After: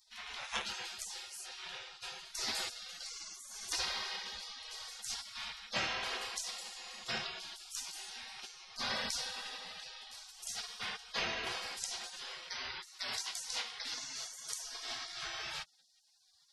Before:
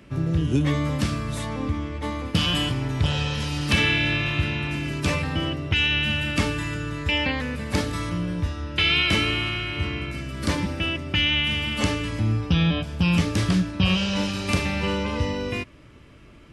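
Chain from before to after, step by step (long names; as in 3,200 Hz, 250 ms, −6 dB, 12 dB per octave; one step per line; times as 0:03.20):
three-way crossover with the lows and the highs turned down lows −16 dB, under 290 Hz, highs −16 dB, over 4,200 Hz
gate on every frequency bin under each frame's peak −30 dB weak
0:12.85–0:14.61: low-shelf EQ 220 Hz −7.5 dB
level +11 dB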